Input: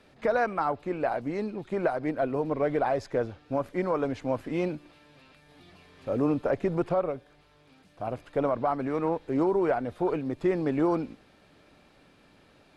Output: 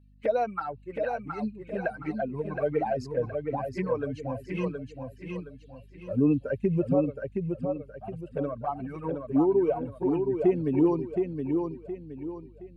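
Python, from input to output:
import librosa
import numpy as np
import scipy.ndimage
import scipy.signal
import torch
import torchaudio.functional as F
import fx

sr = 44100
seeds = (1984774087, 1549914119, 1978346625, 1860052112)

y = fx.bin_expand(x, sr, power=2.0)
y = scipy.signal.sosfilt(scipy.signal.butter(2, 130.0, 'highpass', fs=sr, output='sos'), y)
y = fx.low_shelf(y, sr, hz=190.0, db=11.0)
y = fx.notch(y, sr, hz=3500.0, q=5.6)
y = fx.env_flanger(y, sr, rest_ms=6.0, full_db=-25.0)
y = fx.small_body(y, sr, hz=(1600.0, 2600.0), ring_ms=30, db=10)
y = fx.add_hum(y, sr, base_hz=50, snr_db=27)
y = fx.echo_feedback(y, sr, ms=719, feedback_pct=36, wet_db=-5)
y = y * 10.0 ** (3.5 / 20.0)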